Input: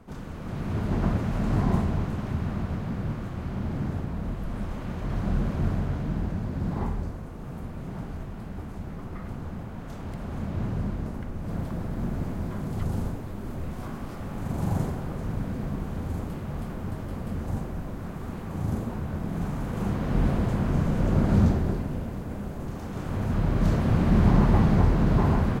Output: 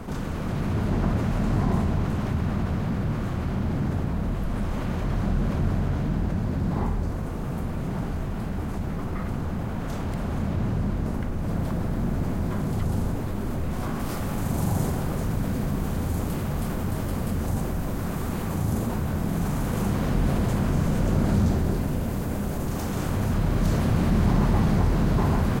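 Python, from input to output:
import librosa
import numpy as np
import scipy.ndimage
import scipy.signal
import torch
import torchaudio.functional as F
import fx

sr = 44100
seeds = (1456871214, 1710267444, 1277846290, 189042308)

y = fx.high_shelf(x, sr, hz=5000.0, db=fx.steps((0.0, 3.0), (13.99, 11.5)))
y = fx.env_flatten(y, sr, amount_pct=50)
y = F.gain(torch.from_numpy(y), -3.0).numpy()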